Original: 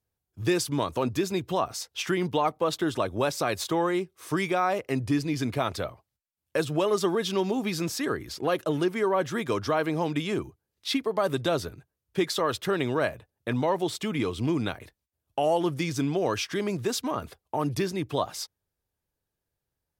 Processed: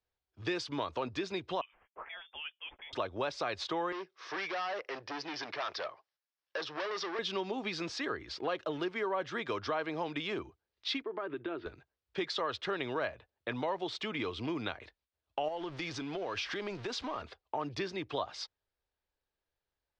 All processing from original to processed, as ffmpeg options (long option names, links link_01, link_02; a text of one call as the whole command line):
ffmpeg -i in.wav -filter_complex "[0:a]asettb=1/sr,asplit=3[link_01][link_02][link_03];[link_01]atrim=end=1.614[link_04];[link_02]atrim=start=1.61:end=2.93,asetpts=PTS-STARTPTS,afade=type=in:duration=0.004:curve=qsin,afade=type=out:start_time=1.316:duration=0.004:curve=qsin,agate=range=-33dB:threshold=-53dB:ratio=3:release=100:detection=peak,aderivative,lowpass=frequency=3100:width_type=q:width=0.5098,lowpass=frequency=3100:width_type=q:width=0.6013,lowpass=frequency=3100:width_type=q:width=0.9,lowpass=frequency=3100:width_type=q:width=2.563,afreqshift=-3700[link_05];[link_03]atrim=start=2.926[link_06];[link_04][link_05]acrossfade=duration=0.004:curve1=hsin:curve2=qsin[link_07];[link_07][link_06]acrossfade=duration=0.004:curve1=qsin:curve2=hsin,asettb=1/sr,asplit=3[link_08][link_09][link_10];[link_08]atrim=end=3.924[link_11];[link_09]atrim=start=3.92:end=7.19,asetpts=PTS-STARTPTS,afade=type=in:duration=0.004:curve=qsin,afade=type=out:start_time=3.266:duration=0.004:curve=qsin,asoftclip=type=hard:threshold=-29dB,highpass=250,equalizer=frequency=250:width_type=q:width=4:gain=-9,equalizer=frequency=1100:width_type=q:width=4:gain=3,equalizer=frequency=1700:width_type=q:width=4:gain=5,equalizer=frequency=5500:width_type=q:width=4:gain=9,lowpass=frequency=5900:width=0.5412,lowpass=frequency=5900:width=1.3066[link_12];[link_10]atrim=start=7.186[link_13];[link_11][link_12]acrossfade=duration=0.004:curve1=hsin:curve2=qsin[link_14];[link_14][link_13]acrossfade=duration=0.004:curve1=qsin:curve2=hsin,asettb=1/sr,asplit=3[link_15][link_16][link_17];[link_15]atrim=end=11.024[link_18];[link_16]atrim=start=11.02:end=11.66,asetpts=PTS-STARTPTS,afade=type=in:duration=0.004:curve=qsin,afade=type=out:start_time=0.636:duration=0.004:curve=qsin,highpass=170,equalizer=frequency=200:width_type=q:width=4:gain=-5,equalizer=frequency=340:width_type=q:width=4:gain=10,equalizer=frequency=540:width_type=q:width=4:gain=-10,equalizer=frequency=770:width_type=q:width=4:gain=-8,equalizer=frequency=1100:width_type=q:width=4:gain=-6,equalizer=frequency=2000:width_type=q:width=4:gain=-5,lowpass=frequency=2400:width=0.5412,lowpass=frequency=2400:width=1.3066,acompressor=threshold=-29dB:ratio=2.5:attack=3.2:release=140:knee=1:detection=peak[link_19];[link_17]atrim=start=11.656[link_20];[link_18][link_19]acrossfade=duration=0.004:curve1=hsin:curve2=qsin[link_21];[link_21][link_20]acrossfade=duration=0.004:curve1=qsin:curve2=hsin,asettb=1/sr,asplit=3[link_22][link_23][link_24];[link_22]atrim=end=15.484[link_25];[link_23]atrim=start=15.48:end=17.22,asetpts=PTS-STARTPTS,afade=type=in:duration=0.004:curve=qsin,afade=type=out:start_time=1.736:duration=0.004:curve=qsin,aeval=exprs='val(0)+0.5*0.0126*sgn(val(0))':channel_layout=same,acompressor=threshold=-28dB:ratio=4:attack=3.2:release=140:knee=1:detection=peak[link_26];[link_24]atrim=start=17.216[link_27];[link_25][link_26]acrossfade=duration=0.004:curve1=hsin:curve2=qsin[link_28];[link_28][link_27]acrossfade=duration=0.004:curve1=qsin:curve2=hsin,lowpass=frequency=4700:width=0.5412,lowpass=frequency=4700:width=1.3066,equalizer=frequency=140:width=0.57:gain=-14,acrossover=split=160[link_29][link_30];[link_30]acompressor=threshold=-35dB:ratio=2[link_31];[link_29][link_31]amix=inputs=2:normalize=0" out.wav